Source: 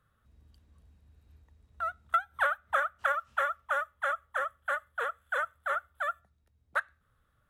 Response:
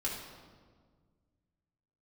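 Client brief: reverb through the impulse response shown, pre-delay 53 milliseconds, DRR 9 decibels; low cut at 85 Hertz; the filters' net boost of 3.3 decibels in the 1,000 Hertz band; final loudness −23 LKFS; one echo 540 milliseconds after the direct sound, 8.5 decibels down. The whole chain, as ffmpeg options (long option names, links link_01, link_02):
-filter_complex "[0:a]highpass=85,equalizer=frequency=1000:width_type=o:gain=5,aecho=1:1:540:0.376,asplit=2[link_01][link_02];[1:a]atrim=start_sample=2205,adelay=53[link_03];[link_02][link_03]afir=irnorm=-1:irlink=0,volume=-12.5dB[link_04];[link_01][link_04]amix=inputs=2:normalize=0,volume=6dB"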